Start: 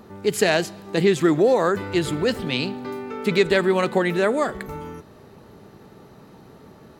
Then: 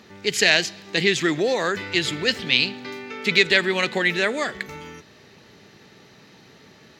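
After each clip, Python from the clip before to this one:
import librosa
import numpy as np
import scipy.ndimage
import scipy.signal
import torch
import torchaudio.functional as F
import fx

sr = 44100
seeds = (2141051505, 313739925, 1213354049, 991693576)

y = scipy.signal.sosfilt(scipy.signal.butter(2, 78.0, 'highpass', fs=sr, output='sos'), x)
y = fx.band_shelf(y, sr, hz=3400.0, db=13.5, octaves=2.3)
y = F.gain(torch.from_numpy(y), -5.0).numpy()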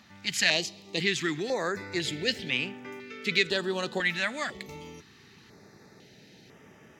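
y = fx.rider(x, sr, range_db=4, speed_s=2.0)
y = fx.filter_held_notch(y, sr, hz=2.0, low_hz=420.0, high_hz=4200.0)
y = F.gain(torch.from_numpy(y), -7.0).numpy()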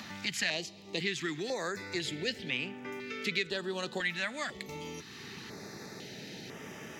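y = fx.band_squash(x, sr, depth_pct=70)
y = F.gain(torch.from_numpy(y), -5.5).numpy()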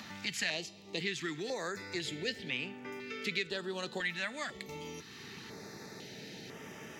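y = fx.comb_fb(x, sr, f0_hz=450.0, decay_s=0.46, harmonics='all', damping=0.0, mix_pct=60)
y = F.gain(torch.from_numpy(y), 5.0).numpy()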